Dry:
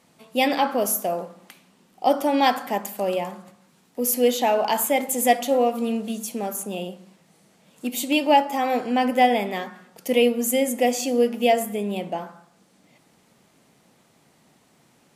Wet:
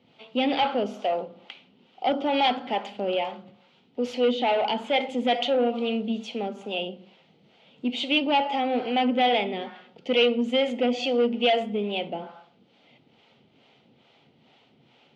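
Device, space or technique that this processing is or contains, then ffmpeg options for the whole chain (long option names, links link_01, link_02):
guitar amplifier with harmonic tremolo: -filter_complex "[0:a]acrossover=split=440[link_01][link_02];[link_01]aeval=exprs='val(0)*(1-0.7/2+0.7/2*cos(2*PI*2.3*n/s))':channel_layout=same[link_03];[link_02]aeval=exprs='val(0)*(1-0.7/2-0.7/2*cos(2*PI*2.3*n/s))':channel_layout=same[link_04];[link_03][link_04]amix=inputs=2:normalize=0,asoftclip=type=tanh:threshold=-21dB,highpass=99,equalizer=frequency=180:width_type=q:width=4:gain=-9,equalizer=frequency=320:width_type=q:width=4:gain=-5,equalizer=frequency=620:width_type=q:width=4:gain=-4,equalizer=frequency=1100:width_type=q:width=4:gain=-10,equalizer=frequency=1700:width_type=q:width=4:gain=-10,equalizer=frequency=3100:width_type=q:width=4:gain=6,lowpass=frequency=3700:width=0.5412,lowpass=frequency=3700:width=1.3066,volume=6.5dB"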